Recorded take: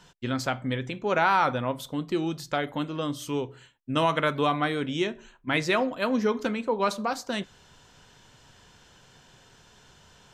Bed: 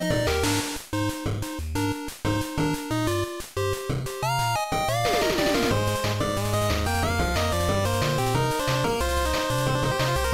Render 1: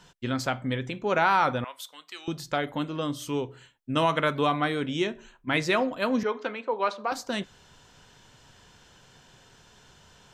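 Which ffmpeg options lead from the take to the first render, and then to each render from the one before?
-filter_complex "[0:a]asettb=1/sr,asplit=3[a][b][c];[a]atrim=end=1.644[d];[b]atrim=start=1.64:end=2.28,asetpts=PTS-STARTPTS,afade=t=in:d=0.004:c=qsin,afade=t=out:st=0.636:d=0.004:c=qsin,highpass=1.5k[e];[c]atrim=start=2.276[f];[d][e]acrossfade=d=0.004:c1=hsin:c2=qsin[g];[g][f]acrossfade=d=0.004:c1=qsin:c2=hsin,asettb=1/sr,asplit=3[h][i][j];[h]atrim=end=6.234[k];[i]atrim=start=6.23:end=7.12,asetpts=PTS-STARTPTS,afade=t=in:d=0.004:c=qsin,afade=t=out:st=0.886:d=0.004:c=qsin,highpass=430,lowpass=3.4k[l];[j]atrim=start=7.116[m];[k][l]acrossfade=d=0.004:c1=hsin:c2=qsin[n];[n][m]acrossfade=d=0.004:c1=qsin:c2=hsin"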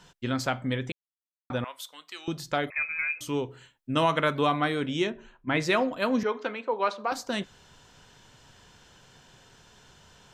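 -filter_complex "[0:a]asettb=1/sr,asplit=3[a][b][c];[a]atrim=end=2.704[d];[b]atrim=start=2.7:end=3.21,asetpts=PTS-STARTPTS,afade=t=in:d=0.004:c=qsin,afade=t=out:st=0.506:d=0.004:c=qsin,lowpass=f=2.3k:t=q:w=0.5098,lowpass=f=2.3k:t=q:w=0.6013,lowpass=f=2.3k:t=q:w=0.9,lowpass=f=2.3k:t=q:w=2.563,afreqshift=-2700[e];[c]atrim=start=3.206[f];[d][e]acrossfade=d=0.004:c1=hsin:c2=qsin[g];[g][f]acrossfade=d=0.004:c1=qsin:c2=hsin,asplit=3[h][i][j];[h]afade=t=out:st=5.09:d=0.02[k];[i]aemphasis=mode=reproduction:type=75fm,afade=t=in:st=5.09:d=0.02,afade=t=out:st=5.59:d=0.02[l];[j]afade=t=in:st=5.59:d=0.02[m];[k][l][m]amix=inputs=3:normalize=0,asplit=3[n][o][p];[n]atrim=end=0.92,asetpts=PTS-STARTPTS,afade=t=out:st=0.916:d=0.004:c=hsin[q];[o]atrim=start=0.92:end=1.5,asetpts=PTS-STARTPTS,volume=0[r];[p]atrim=start=1.5,asetpts=PTS-STARTPTS,afade=t=in:d=0.004:c=hsin[s];[q][r][s]concat=n=3:v=0:a=1"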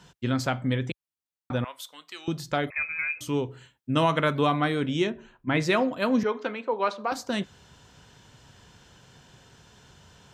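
-af "highpass=51,lowshelf=f=230:g=6.5"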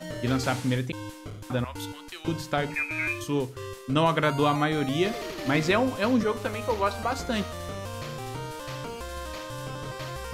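-filter_complex "[1:a]volume=-12dB[a];[0:a][a]amix=inputs=2:normalize=0"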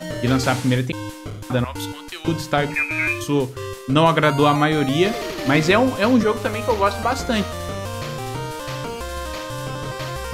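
-af "volume=7.5dB"

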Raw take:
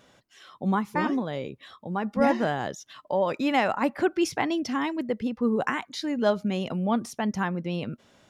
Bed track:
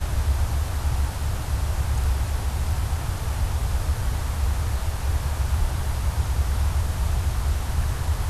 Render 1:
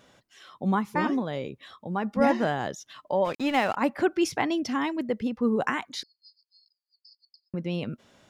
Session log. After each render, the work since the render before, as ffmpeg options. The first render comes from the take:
-filter_complex "[0:a]asplit=3[a][b][c];[a]afade=t=out:st=3.24:d=0.02[d];[b]aeval=exprs='sgn(val(0))*max(abs(val(0))-0.0119,0)':c=same,afade=t=in:st=3.24:d=0.02,afade=t=out:st=3.75:d=0.02[e];[c]afade=t=in:st=3.75:d=0.02[f];[d][e][f]amix=inputs=3:normalize=0,asettb=1/sr,asplit=3[g][h][i];[g]atrim=end=6.034[j];[h]atrim=start=6.03:end=7.54,asetpts=PTS-STARTPTS,afade=t=in:d=0.004:c=qsin,afade=t=out:st=1.506:d=0.004:c=qsin,asuperpass=centerf=4700:order=12:qfactor=5.7[k];[i]atrim=start=7.536[l];[j][k]acrossfade=d=0.004:c1=hsin:c2=qsin[m];[m][l]acrossfade=d=0.004:c1=qsin:c2=hsin"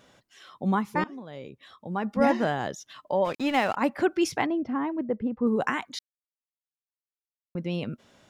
-filter_complex "[0:a]asettb=1/sr,asplit=3[a][b][c];[a]atrim=end=4.464[d];[b]atrim=start=4.46:end=5.47,asetpts=PTS-STARTPTS,afade=t=in:d=0.004:c=qsin,afade=t=out:st=1.006:d=0.004:c=qsin,lowpass=1.2k[e];[c]atrim=start=5.466[f];[d][e]acrossfade=d=0.004:c1=hsin:c2=qsin[g];[g][f]acrossfade=d=0.004:c1=qsin:c2=hsin,asplit=4[h][i][j][k];[h]atrim=end=1.04,asetpts=PTS-STARTPTS,afade=t=out:st=1.036:d=0.004:c=hsin:silence=0.0944061[l];[i]atrim=start=1.04:end=5.99,asetpts=PTS-STARTPTS,afade=t=in:d=1.03:silence=0.0944061,afade=t=out:st=4.946:d=0.004:c=hsin[m];[j]atrim=start=5.99:end=7.55,asetpts=PTS-STARTPTS,volume=0[n];[k]atrim=start=7.55,asetpts=PTS-STARTPTS,afade=t=in:d=0.004:c=hsin[o];[l][m][n][o]concat=n=4:v=0:a=1"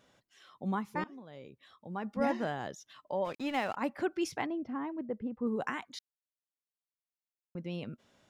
-af "volume=-8.5dB"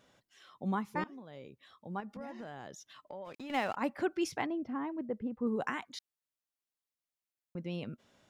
-filter_complex "[0:a]asettb=1/sr,asplit=3[a][b][c];[a]atrim=end=2.004[d];[b]atrim=start=2:end=3.5,asetpts=PTS-STARTPTS,afade=t=in:d=0.004:c=qsin,afade=t=out:st=1.496:d=0.004:c=qsin,acompressor=threshold=-42dB:ratio=5:attack=3.2:release=140:knee=1:detection=peak[e];[c]atrim=start=3.496[f];[d][e]acrossfade=d=0.004:c1=hsin:c2=qsin[g];[g][f]acrossfade=d=0.004:c1=qsin:c2=hsin"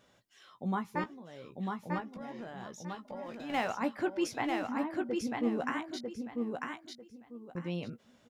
-filter_complex "[0:a]asplit=2[a][b];[b]adelay=17,volume=-9dB[c];[a][c]amix=inputs=2:normalize=0,aecho=1:1:946|1892|2838:0.668|0.154|0.0354"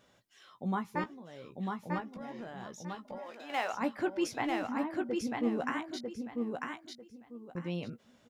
-filter_complex "[0:a]asettb=1/sr,asplit=3[a][b][c];[a]atrim=end=3.184[d];[b]atrim=start=3.18:end=3.73,asetpts=PTS-STARTPTS,afade=t=in:d=0.004:c=qsin,afade=t=out:st=0.546:d=0.004:c=qsin,highpass=470[e];[c]atrim=start=3.726[f];[d][e]acrossfade=d=0.004:c1=hsin:c2=qsin[g];[g][f]acrossfade=d=0.004:c1=qsin:c2=hsin"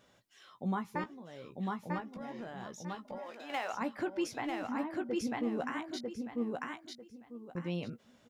-af "alimiter=level_in=1dB:limit=-24dB:level=0:latency=1:release=176,volume=-1dB"

